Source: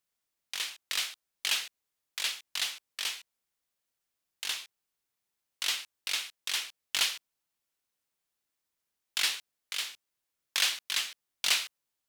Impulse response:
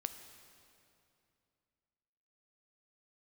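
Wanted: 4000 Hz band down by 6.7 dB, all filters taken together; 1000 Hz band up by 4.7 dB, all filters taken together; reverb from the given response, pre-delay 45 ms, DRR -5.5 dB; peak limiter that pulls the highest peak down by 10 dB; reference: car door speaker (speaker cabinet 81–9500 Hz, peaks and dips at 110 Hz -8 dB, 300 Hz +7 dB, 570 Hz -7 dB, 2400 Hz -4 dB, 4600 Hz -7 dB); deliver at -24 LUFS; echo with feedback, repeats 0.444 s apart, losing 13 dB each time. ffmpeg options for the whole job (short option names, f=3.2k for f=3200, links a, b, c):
-filter_complex "[0:a]equalizer=f=1k:t=o:g=7,equalizer=f=4k:t=o:g=-6.5,alimiter=limit=-22dB:level=0:latency=1,aecho=1:1:444|888|1332:0.224|0.0493|0.0108,asplit=2[a][b];[1:a]atrim=start_sample=2205,adelay=45[c];[b][c]afir=irnorm=-1:irlink=0,volume=7dB[d];[a][d]amix=inputs=2:normalize=0,highpass=81,equalizer=f=110:t=q:w=4:g=-8,equalizer=f=300:t=q:w=4:g=7,equalizer=f=570:t=q:w=4:g=-7,equalizer=f=2.4k:t=q:w=4:g=-4,equalizer=f=4.6k:t=q:w=4:g=-7,lowpass=f=9.5k:w=0.5412,lowpass=f=9.5k:w=1.3066,volume=9dB"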